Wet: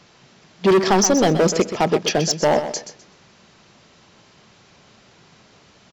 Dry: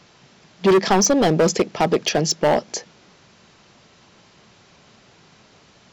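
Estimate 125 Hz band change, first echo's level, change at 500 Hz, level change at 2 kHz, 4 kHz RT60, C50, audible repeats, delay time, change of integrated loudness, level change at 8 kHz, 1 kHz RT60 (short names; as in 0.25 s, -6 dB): +0.5 dB, -10.5 dB, +0.5 dB, +0.5 dB, none, none, 2, 0.127 s, +0.5 dB, +0.5 dB, none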